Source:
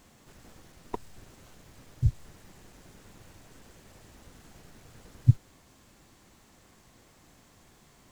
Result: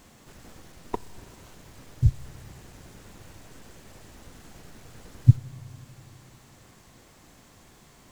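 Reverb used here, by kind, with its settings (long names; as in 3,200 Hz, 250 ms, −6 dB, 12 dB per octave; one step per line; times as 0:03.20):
spring reverb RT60 3.4 s, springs 30/41 ms, DRR 19.5 dB
level +4.5 dB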